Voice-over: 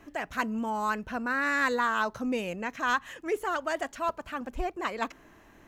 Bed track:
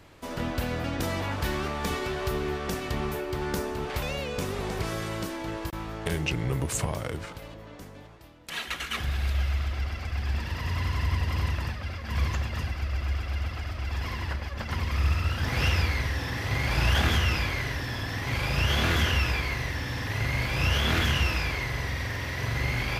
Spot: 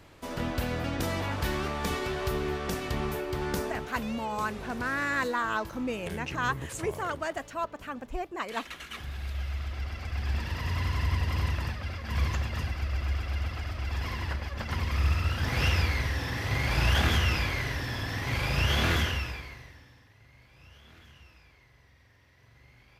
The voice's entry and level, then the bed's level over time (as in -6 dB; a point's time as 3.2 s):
3.55 s, -2.5 dB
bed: 3.67 s -1 dB
3.93 s -9 dB
9.1 s -9 dB
10.33 s -1 dB
18.94 s -1 dB
20.16 s -29.5 dB